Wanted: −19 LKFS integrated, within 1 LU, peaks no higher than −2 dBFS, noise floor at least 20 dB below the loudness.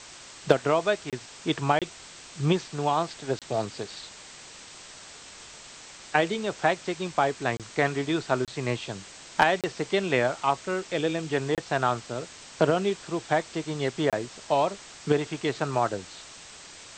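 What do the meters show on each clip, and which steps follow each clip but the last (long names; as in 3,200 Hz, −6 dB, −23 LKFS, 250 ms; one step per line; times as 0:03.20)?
number of dropouts 8; longest dropout 27 ms; background noise floor −47 dBFS; target noise floor −48 dBFS; integrated loudness −27.5 LKFS; sample peak −6.5 dBFS; target loudness −19.0 LKFS
→ repair the gap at 0:01.10/0:01.79/0:03.39/0:07.57/0:08.45/0:09.61/0:11.55/0:14.10, 27 ms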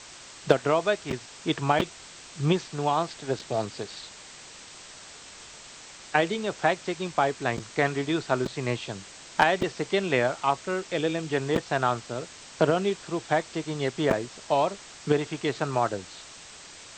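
number of dropouts 0; background noise floor −47 dBFS; target noise floor −48 dBFS
→ noise reduction from a noise print 6 dB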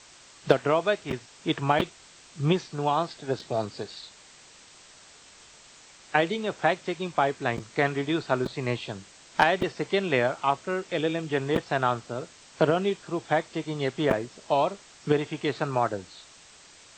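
background noise floor −52 dBFS; integrated loudness −27.5 LKFS; sample peak −6.5 dBFS; target loudness −19.0 LKFS
→ level +8.5 dB
brickwall limiter −2 dBFS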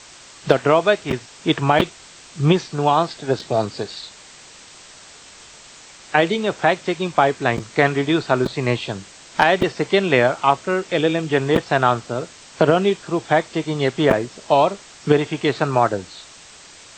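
integrated loudness −19.5 LKFS; sample peak −2.0 dBFS; background noise floor −44 dBFS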